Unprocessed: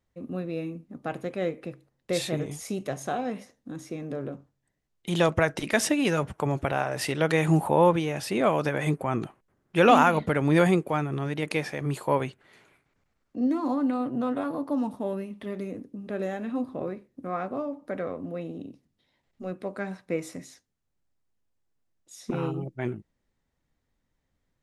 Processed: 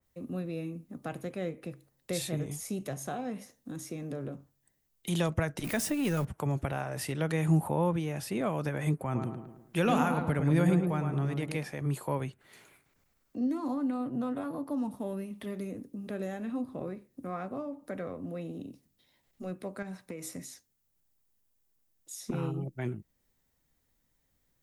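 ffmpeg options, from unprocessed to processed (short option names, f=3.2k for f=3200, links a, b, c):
-filter_complex "[0:a]asettb=1/sr,asplit=3[a][b][c];[a]atrim=end=5.644[d];[b]atrim=start=5.64:end=6.25,asetpts=PTS-STARTPTS,afade=t=in:d=0.004:c=qsin,afade=t=out:st=0.606:d=0.004:c=qsin,aeval=exprs='val(0)+0.5*0.0251*sgn(val(0))':c=same[e];[c]atrim=start=6.246[f];[d][e]acrossfade=d=0.004:c1=hsin:c2=qsin[g];[g][f]acrossfade=d=0.004:c1=qsin:c2=hsin,asettb=1/sr,asplit=3[h][i][j];[h]atrim=end=9.014[k];[i]atrim=start=9.01:end=11.64,asetpts=PTS-STARTPTS,afade=t=in:d=0.004:c=qsin,afade=t=out:st=2.626:d=0.004:c=qsin,asplit=2[l][m];[m]adelay=109,lowpass=f=1.6k:p=1,volume=-5dB,asplit=2[n][o];[o]adelay=109,lowpass=f=1.6k:p=1,volume=0.41,asplit=2[p][q];[q]adelay=109,lowpass=f=1.6k:p=1,volume=0.41,asplit=2[r][s];[s]adelay=109,lowpass=f=1.6k:p=1,volume=0.41,asplit=2[t][u];[u]adelay=109,lowpass=f=1.6k:p=1,volume=0.41[v];[l][n][p][r][t][v]amix=inputs=6:normalize=0,atrim=end_sample=115983[w];[j]atrim=start=11.636[x];[k][w]acrossfade=d=0.004:c1=hsin:c2=qsin[y];[y][x]acrossfade=d=0.004:c1=qsin:c2=hsin,asettb=1/sr,asplit=3[z][aa][ab];[z]atrim=end=19.824[ac];[aa]atrim=start=19.82:end=20.35,asetpts=PTS-STARTPTS,afade=t=in:d=0.004:c=qsin,afade=t=out:st=0.526:d=0.004:c=qsin,acompressor=threshold=-33dB:ratio=6:attack=3.2:release=140:knee=1:detection=peak[ad];[ab]atrim=start=20.346[ae];[ac][ad]acrossfade=d=0.004:c1=hsin:c2=qsin[af];[af][ae]acrossfade=d=0.004:c1=qsin:c2=hsin,aemphasis=mode=production:type=50fm,acrossover=split=210[ag][ah];[ah]acompressor=threshold=-47dB:ratio=1.5[ai];[ag][ai]amix=inputs=2:normalize=0,adynamicequalizer=threshold=0.00282:dfrequency=2500:dqfactor=0.7:tfrequency=2500:tqfactor=0.7:attack=5:release=100:ratio=0.375:range=3:mode=cutabove:tftype=highshelf"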